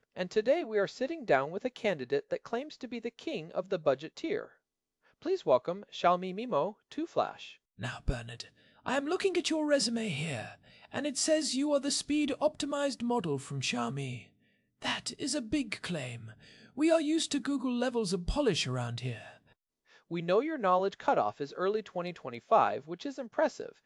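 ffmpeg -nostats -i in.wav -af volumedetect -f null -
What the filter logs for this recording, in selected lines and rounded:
mean_volume: -32.6 dB
max_volume: -11.4 dB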